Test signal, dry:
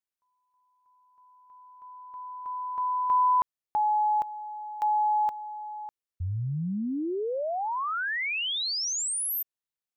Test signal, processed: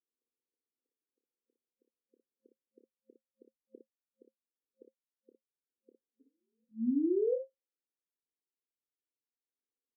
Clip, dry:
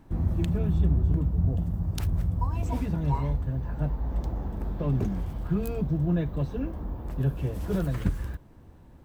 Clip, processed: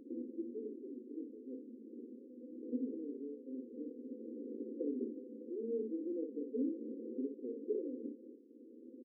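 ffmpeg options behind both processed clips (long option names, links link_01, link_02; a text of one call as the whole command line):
ffmpeg -i in.wav -af "acompressor=threshold=-35dB:ratio=6:attack=27:release=667:detection=rms,aecho=1:1:28|58:0.355|0.501,afftfilt=real='re*between(b*sr/4096,220,530)':imag='im*between(b*sr/4096,220,530)':win_size=4096:overlap=0.75,volume=5.5dB" out.wav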